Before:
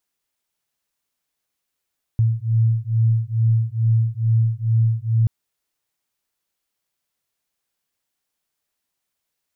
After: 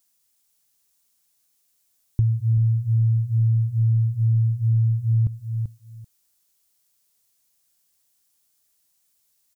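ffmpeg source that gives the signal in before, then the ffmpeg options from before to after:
-f lavfi -i "aevalsrc='0.119*(sin(2*PI*112*t)+sin(2*PI*114.3*t))':d=3.08:s=44100"
-af "bass=f=250:g=4,treble=f=4000:g=13,aecho=1:1:387|774:0.251|0.0427,acompressor=threshold=0.141:ratio=6"

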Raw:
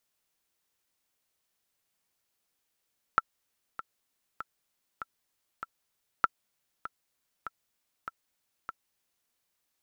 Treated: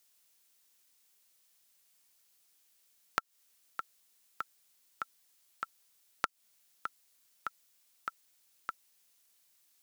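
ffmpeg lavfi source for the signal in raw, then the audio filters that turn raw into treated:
-f lavfi -i "aevalsrc='pow(10,(-8.5-15*gte(mod(t,5*60/98),60/98))/20)*sin(2*PI*1340*mod(t,60/98))*exp(-6.91*mod(t,60/98)/0.03)':d=6.12:s=44100"
-af "highpass=120,highshelf=f=2500:g=11.5,acompressor=threshold=0.0398:ratio=12"

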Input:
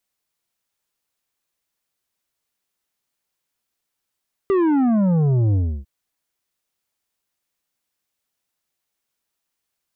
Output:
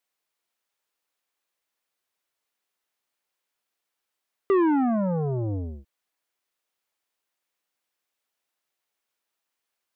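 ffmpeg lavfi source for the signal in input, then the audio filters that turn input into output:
-f lavfi -i "aevalsrc='0.168*clip((1.35-t)/0.31,0,1)*tanh(2.66*sin(2*PI*400*1.35/log(65/400)*(exp(log(65/400)*t/1.35)-1)))/tanh(2.66)':d=1.35:s=44100"
-af "bass=f=250:g=-12,treble=f=4000:g=-5"

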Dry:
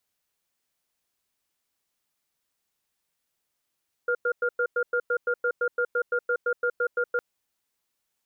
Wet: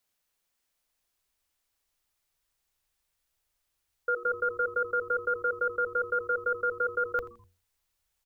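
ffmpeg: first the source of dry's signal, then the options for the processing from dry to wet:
-f lavfi -i "aevalsrc='0.0596*(sin(2*PI*486*t)+sin(2*PI*1410*t))*clip(min(mod(t,0.17),0.07-mod(t,0.17))/0.005,0,1)':d=3.11:s=44100"
-filter_complex "[0:a]bandreject=f=60:t=h:w=6,bandreject=f=120:t=h:w=6,bandreject=f=180:t=h:w=6,bandreject=f=240:t=h:w=6,bandreject=f=300:t=h:w=6,bandreject=f=360:t=h:w=6,bandreject=f=420:t=h:w=6,bandreject=f=480:t=h:w=6,asplit=4[s0][s1][s2][s3];[s1]adelay=83,afreqshift=-130,volume=0.126[s4];[s2]adelay=166,afreqshift=-260,volume=0.0452[s5];[s3]adelay=249,afreqshift=-390,volume=0.0164[s6];[s0][s4][s5][s6]amix=inputs=4:normalize=0,asubboost=boost=11:cutoff=66"

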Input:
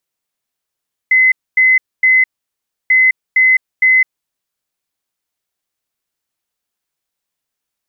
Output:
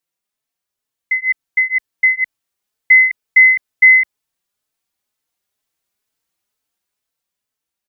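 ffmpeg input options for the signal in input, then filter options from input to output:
-f lavfi -i "aevalsrc='0.473*sin(2*PI*2040*t)*clip(min(mod(mod(t,1.79),0.46),0.21-mod(mod(t,1.79),0.46))/0.005,0,1)*lt(mod(t,1.79),1.38)':d=3.58:s=44100"
-filter_complex "[0:a]dynaudnorm=f=420:g=7:m=2,asplit=2[s0][s1];[s1]adelay=4,afreqshift=2.1[s2];[s0][s2]amix=inputs=2:normalize=1"

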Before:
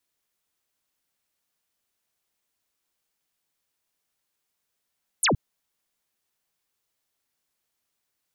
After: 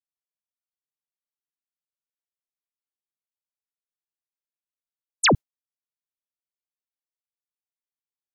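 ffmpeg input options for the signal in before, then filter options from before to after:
-f lavfi -i "aevalsrc='0.126*clip(t/0.002,0,1)*clip((0.12-t)/0.002,0,1)*sin(2*PI*12000*0.12/log(87/12000)*(exp(log(87/12000)*t/0.12)-1))':d=0.12:s=44100"
-af "agate=range=0.0224:threshold=0.1:ratio=3:detection=peak,acontrast=70"

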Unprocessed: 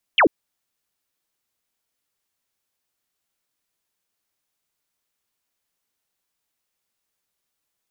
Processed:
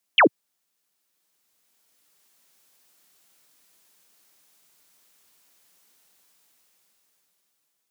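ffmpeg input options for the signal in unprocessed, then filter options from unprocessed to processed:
-f lavfi -i "aevalsrc='0.282*clip(t/0.002,0,1)*clip((0.09-t)/0.002,0,1)*sin(2*PI*3400*0.09/log(250/3400)*(exp(log(250/3400)*t/0.09)-1))':d=0.09:s=44100"
-af "highpass=f=130:w=0.5412,highpass=f=130:w=1.3066,bass=f=250:g=0,treble=f=4000:g=3,dynaudnorm=f=370:g=9:m=5.62"

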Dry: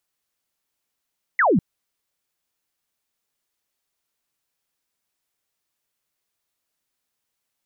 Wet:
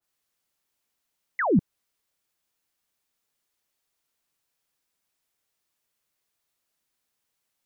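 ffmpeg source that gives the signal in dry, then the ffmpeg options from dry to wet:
-f lavfi -i "aevalsrc='0.2*clip(t/0.002,0,1)*clip((0.2-t)/0.002,0,1)*sin(2*PI*2100*0.2/log(150/2100)*(exp(log(150/2100)*t/0.2)-1))':d=0.2:s=44100"
-filter_complex "[0:a]acrossover=split=290[s0][s1];[s1]alimiter=limit=0.0794:level=0:latency=1:release=35[s2];[s0][s2]amix=inputs=2:normalize=0,adynamicequalizer=threshold=0.00891:dfrequency=1800:dqfactor=0.7:tfrequency=1800:tqfactor=0.7:attack=5:release=100:ratio=0.375:range=2:mode=cutabove:tftype=highshelf"

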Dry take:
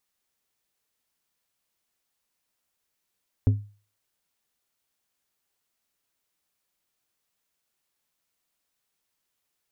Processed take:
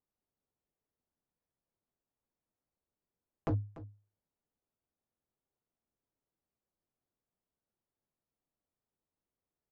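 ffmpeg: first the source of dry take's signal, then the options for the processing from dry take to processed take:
-f lavfi -i "aevalsrc='0.224*pow(10,-3*t/0.37)*sin(2*PI*103*t)+0.0794*pow(10,-3*t/0.195)*sin(2*PI*257.5*t)+0.0282*pow(10,-3*t/0.14)*sin(2*PI*412*t)+0.01*pow(10,-3*t/0.12)*sin(2*PI*515*t)+0.00355*pow(10,-3*t/0.1)*sin(2*PI*669.5*t)':d=0.89:s=44100"
-af "aresample=16000,aeval=exprs='0.0531*(abs(mod(val(0)/0.0531+3,4)-2)-1)':c=same,aresample=44100,adynamicsmooth=sensitivity=6:basefreq=730,aecho=1:1:292:0.15"

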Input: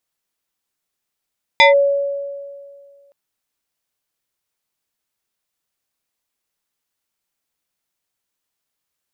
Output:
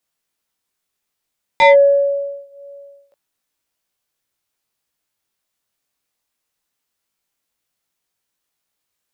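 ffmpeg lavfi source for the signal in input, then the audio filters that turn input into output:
-f lavfi -i "aevalsrc='0.562*pow(10,-3*t/2.02)*sin(2*PI*562*t+2.2*clip(1-t/0.14,0,1)*sin(2*PI*2.62*562*t))':d=1.52:s=44100"
-filter_complex "[0:a]acrossover=split=130|1000|1700[s0][s1][s2][s3];[s3]alimiter=limit=0.178:level=0:latency=1[s4];[s0][s1][s2][s4]amix=inputs=4:normalize=0,acontrast=34,flanger=delay=17.5:depth=3.7:speed=0.26"

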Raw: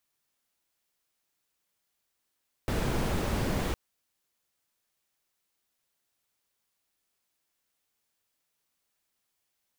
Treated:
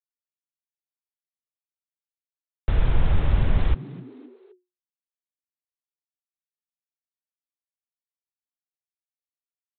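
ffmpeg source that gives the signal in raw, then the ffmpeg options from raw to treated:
-f lavfi -i "anoisesrc=c=brown:a=0.176:d=1.06:r=44100:seed=1"
-filter_complex "[0:a]asubboost=boost=9:cutoff=88,aresample=8000,aeval=exprs='val(0)*gte(abs(val(0)),0.0168)':c=same,aresample=44100,asplit=4[s0][s1][s2][s3];[s1]adelay=259,afreqshift=120,volume=0.0944[s4];[s2]adelay=518,afreqshift=240,volume=0.0437[s5];[s3]adelay=777,afreqshift=360,volume=0.02[s6];[s0][s4][s5][s6]amix=inputs=4:normalize=0"

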